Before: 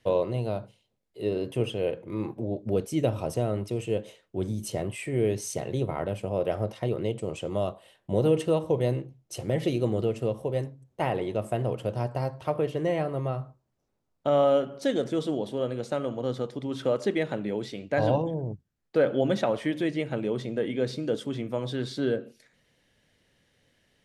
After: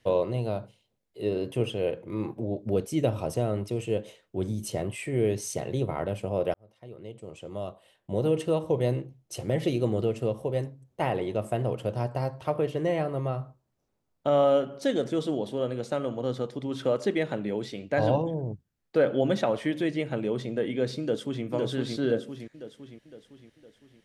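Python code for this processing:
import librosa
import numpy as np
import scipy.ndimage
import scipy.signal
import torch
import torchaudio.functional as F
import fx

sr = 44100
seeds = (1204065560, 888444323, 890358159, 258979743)

y = fx.echo_throw(x, sr, start_s=21.01, length_s=0.44, ms=510, feedback_pct=50, wet_db=-2.0)
y = fx.edit(y, sr, fx.fade_in_span(start_s=6.54, length_s=2.34), tone=tone)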